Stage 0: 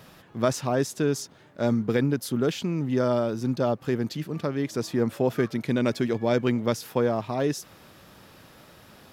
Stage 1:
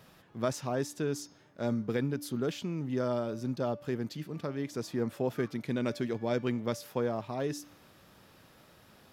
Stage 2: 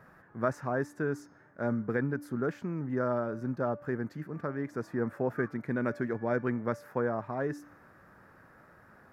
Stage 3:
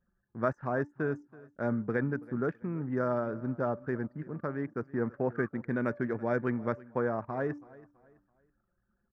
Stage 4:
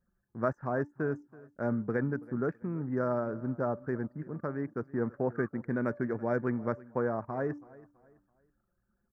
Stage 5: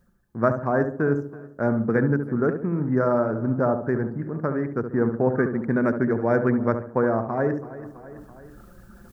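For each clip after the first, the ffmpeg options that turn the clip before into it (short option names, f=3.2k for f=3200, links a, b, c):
-af "bandreject=f=291.9:t=h:w=4,bandreject=f=583.8:t=h:w=4,bandreject=f=875.7:t=h:w=4,bandreject=f=1.1676k:t=h:w=4,bandreject=f=1.4595k:t=h:w=4,bandreject=f=1.7514k:t=h:w=4,bandreject=f=2.0433k:t=h:w=4,bandreject=f=2.3352k:t=h:w=4,bandreject=f=2.6271k:t=h:w=4,bandreject=f=2.919k:t=h:w=4,bandreject=f=3.2109k:t=h:w=4,bandreject=f=3.5028k:t=h:w=4,bandreject=f=3.7947k:t=h:w=4,bandreject=f=4.0866k:t=h:w=4,bandreject=f=4.3785k:t=h:w=4,bandreject=f=4.6704k:t=h:w=4,bandreject=f=4.9623k:t=h:w=4,bandreject=f=5.2542k:t=h:w=4,bandreject=f=5.5461k:t=h:w=4,bandreject=f=5.838k:t=h:w=4,bandreject=f=6.1299k:t=h:w=4,bandreject=f=6.4218k:t=h:w=4,bandreject=f=6.7137k:t=h:w=4,volume=-7.5dB"
-af "highshelf=f=2.3k:t=q:w=3:g=-12"
-af "anlmdn=0.0631,aecho=1:1:329|658|987:0.0891|0.0303|0.0103"
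-af "equalizer=f=3.1k:t=o:w=0.83:g=-12.5"
-filter_complex "[0:a]areverse,acompressor=mode=upward:threshold=-39dB:ratio=2.5,areverse,asplit=2[a][b];[b]adelay=70,lowpass=f=960:p=1,volume=-6.5dB,asplit=2[c][d];[d]adelay=70,lowpass=f=960:p=1,volume=0.46,asplit=2[e][f];[f]adelay=70,lowpass=f=960:p=1,volume=0.46,asplit=2[g][h];[h]adelay=70,lowpass=f=960:p=1,volume=0.46,asplit=2[i][j];[j]adelay=70,lowpass=f=960:p=1,volume=0.46[k];[a][c][e][g][i][k]amix=inputs=6:normalize=0,volume=9dB"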